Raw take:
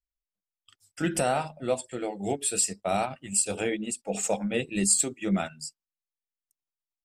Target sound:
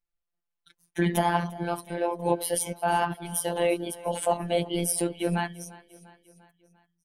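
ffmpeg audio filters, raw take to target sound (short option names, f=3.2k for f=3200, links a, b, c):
-filter_complex "[0:a]lowpass=11k,equalizer=f=6k:t=o:w=2.1:g=-13,asplit=2[a][b];[b]alimiter=level_in=2dB:limit=-24dB:level=0:latency=1:release=41,volume=-2dB,volume=-1dB[c];[a][c]amix=inputs=2:normalize=0,asetrate=52444,aresample=44100,atempo=0.840896,afftfilt=real='hypot(re,im)*cos(PI*b)':imag='0':win_size=1024:overlap=0.75,aecho=1:1:347|694|1041|1388:0.0944|0.0519|0.0286|0.0157,volume=5dB"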